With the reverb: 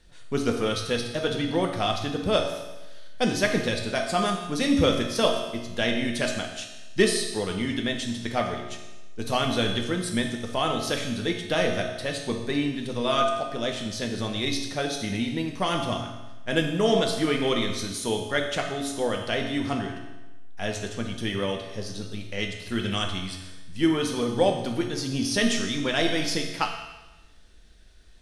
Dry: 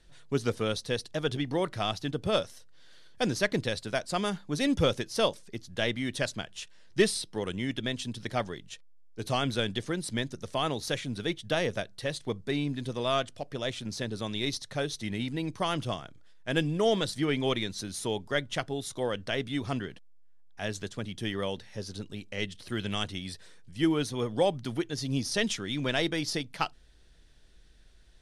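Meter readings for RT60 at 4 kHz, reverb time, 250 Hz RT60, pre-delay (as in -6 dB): 1.1 s, 1.1 s, 1.1 s, 3 ms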